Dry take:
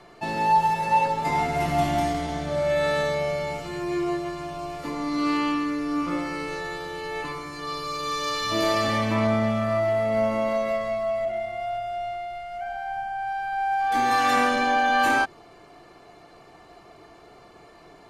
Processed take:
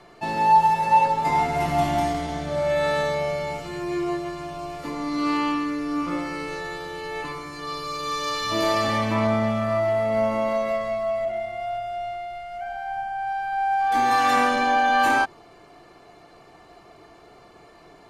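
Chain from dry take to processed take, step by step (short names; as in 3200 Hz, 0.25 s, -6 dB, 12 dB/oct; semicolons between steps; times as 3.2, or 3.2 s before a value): dynamic EQ 930 Hz, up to +4 dB, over -34 dBFS, Q 2.7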